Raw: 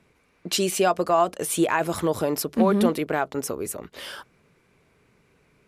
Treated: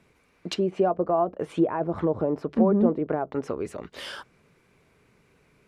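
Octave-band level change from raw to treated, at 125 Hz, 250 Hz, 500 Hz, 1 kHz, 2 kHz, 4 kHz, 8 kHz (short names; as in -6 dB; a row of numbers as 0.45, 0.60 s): 0.0 dB, 0.0 dB, -1.0 dB, -5.0 dB, -10.5 dB, -8.5 dB, under -15 dB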